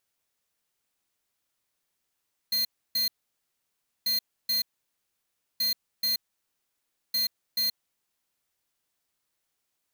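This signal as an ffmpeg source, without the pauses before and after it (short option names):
-f lavfi -i "aevalsrc='0.0501*(2*lt(mod(4190*t,1),0.5)-1)*clip(min(mod(mod(t,1.54),0.43),0.13-mod(mod(t,1.54),0.43))/0.005,0,1)*lt(mod(t,1.54),0.86)':d=6.16:s=44100"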